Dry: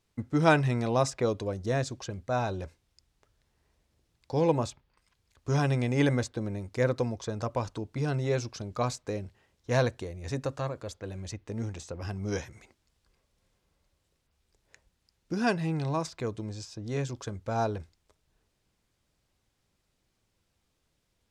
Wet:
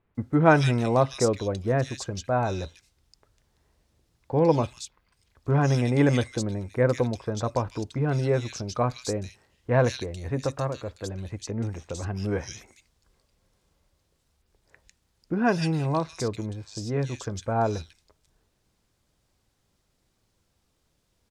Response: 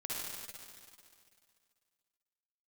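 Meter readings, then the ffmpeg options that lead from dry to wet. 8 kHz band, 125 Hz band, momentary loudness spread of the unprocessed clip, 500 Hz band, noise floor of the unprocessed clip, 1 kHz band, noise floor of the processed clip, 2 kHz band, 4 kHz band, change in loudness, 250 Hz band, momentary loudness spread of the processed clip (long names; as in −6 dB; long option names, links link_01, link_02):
+4.5 dB, +4.5 dB, 13 LU, +4.5 dB, −77 dBFS, +4.5 dB, −72 dBFS, +3.0 dB, +3.5 dB, +4.5 dB, +4.5 dB, 13 LU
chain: -filter_complex "[0:a]acrossover=split=2400[link_01][link_02];[link_02]adelay=150[link_03];[link_01][link_03]amix=inputs=2:normalize=0,volume=4.5dB"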